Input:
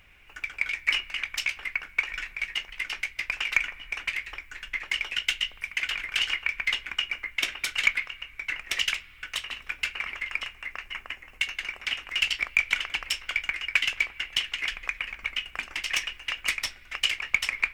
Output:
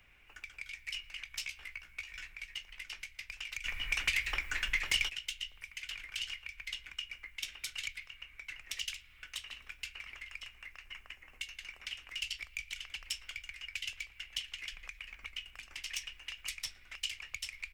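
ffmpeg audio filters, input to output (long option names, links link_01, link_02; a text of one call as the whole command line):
ffmpeg -i in.wav -filter_complex "[0:a]acrossover=split=150|3000[link_01][link_02][link_03];[link_02]acompressor=threshold=-41dB:ratio=6[link_04];[link_01][link_04][link_03]amix=inputs=3:normalize=0,acrossover=split=110|2200[link_05][link_06][link_07];[link_06]alimiter=level_in=9.5dB:limit=-24dB:level=0:latency=1:release=140,volume=-9.5dB[link_08];[link_05][link_08][link_07]amix=inputs=3:normalize=0,asettb=1/sr,asplit=3[link_09][link_10][link_11];[link_09]atrim=end=1.294[link_12];[link_10]atrim=start=1.29:end=2.26,asetpts=PTS-STARTPTS,afade=type=in:duration=0.004:curve=qsin,afade=type=out:start_time=0.966:duration=0.004:curve=qsin,asplit=2[link_13][link_14];[link_14]adelay=16,volume=-5.5dB[link_15];[link_13][link_15]amix=inputs=2:normalize=0,atrim=end_sample=42777[link_16];[link_11]atrim=start=2.256[link_17];[link_12][link_16]acrossfade=duration=0.004:curve1=hsin:curve2=qsin[link_18];[link_18][link_17]acrossfade=duration=0.004:curve1=qsin:curve2=hsin,asplit=3[link_19][link_20][link_21];[link_19]afade=type=out:start_time=3.64:duration=0.02[link_22];[link_20]aeval=exprs='0.178*sin(PI/2*3.55*val(0)/0.178)':channel_layout=same,afade=type=in:start_time=3.64:duration=0.02,afade=type=out:start_time=5.08:duration=0.02[link_23];[link_21]afade=type=in:start_time=5.08:duration=0.02[link_24];[link_22][link_23][link_24]amix=inputs=3:normalize=0,asplit=2[link_25][link_26];[link_26]adelay=114,lowpass=frequency=2000:poles=1,volume=-21.5dB,asplit=2[link_27][link_28];[link_28]adelay=114,lowpass=frequency=2000:poles=1,volume=0.51,asplit=2[link_29][link_30];[link_30]adelay=114,lowpass=frequency=2000:poles=1,volume=0.51,asplit=2[link_31][link_32];[link_32]adelay=114,lowpass=frequency=2000:poles=1,volume=0.51[link_33];[link_25][link_27][link_29][link_31][link_33]amix=inputs=5:normalize=0,volume=-7dB" out.wav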